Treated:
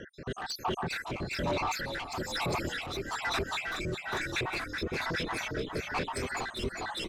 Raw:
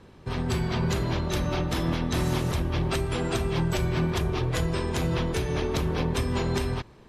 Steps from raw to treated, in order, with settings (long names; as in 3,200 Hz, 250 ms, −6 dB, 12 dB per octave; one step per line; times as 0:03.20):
time-frequency cells dropped at random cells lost 83%
in parallel at +1.5 dB: downward compressor, threshold −37 dBFS, peak gain reduction 13 dB
on the sum: brickwall limiter −25.5 dBFS, peak gain reduction 11.5 dB
on a send: echo with shifted repeats 404 ms, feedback 58%, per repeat −35 Hz, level −5.5 dB
on the sum: mid-hump overdrive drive 19 dB, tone 3,400 Hz, clips at −21 dBFS
rotating-speaker cabinet horn 1.1 Hz